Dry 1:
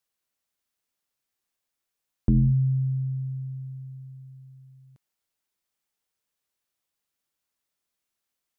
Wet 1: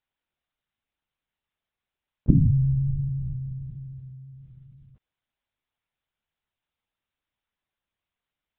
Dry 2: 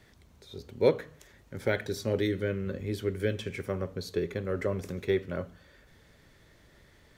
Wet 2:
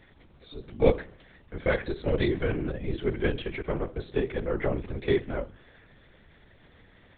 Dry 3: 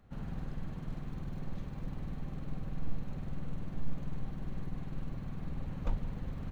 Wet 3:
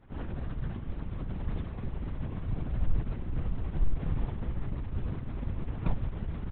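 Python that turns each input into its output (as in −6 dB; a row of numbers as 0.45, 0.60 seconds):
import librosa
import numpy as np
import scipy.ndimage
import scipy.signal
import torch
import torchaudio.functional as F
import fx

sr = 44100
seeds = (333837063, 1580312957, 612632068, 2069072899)

y = fx.lpc_vocoder(x, sr, seeds[0], excitation='whisper', order=10)
y = y * 10.0 ** (-30 / 20.0) / np.sqrt(np.mean(np.square(y)))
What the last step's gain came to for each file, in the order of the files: +1.0, +3.0, +3.5 decibels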